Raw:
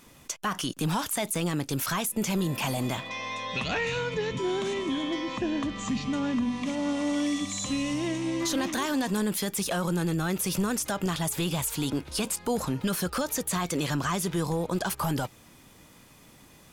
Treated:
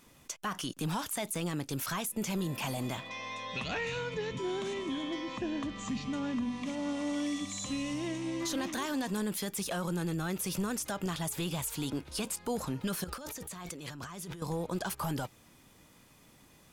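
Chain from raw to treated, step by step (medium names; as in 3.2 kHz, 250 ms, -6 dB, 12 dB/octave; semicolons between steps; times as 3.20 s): 13.04–14.42 s: compressor with a negative ratio -37 dBFS, ratio -1; trim -6 dB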